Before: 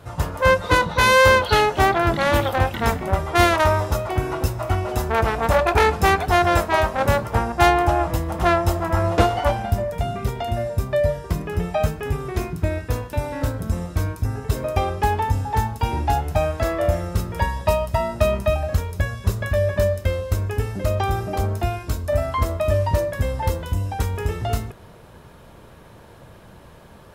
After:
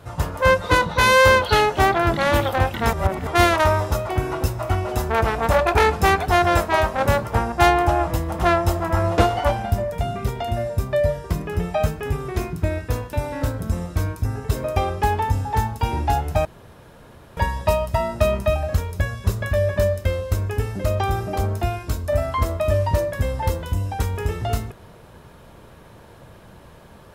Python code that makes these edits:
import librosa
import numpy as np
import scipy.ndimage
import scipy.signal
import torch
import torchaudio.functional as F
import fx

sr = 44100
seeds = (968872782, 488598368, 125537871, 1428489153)

y = fx.edit(x, sr, fx.reverse_span(start_s=2.93, length_s=0.34),
    fx.room_tone_fill(start_s=16.45, length_s=0.92), tone=tone)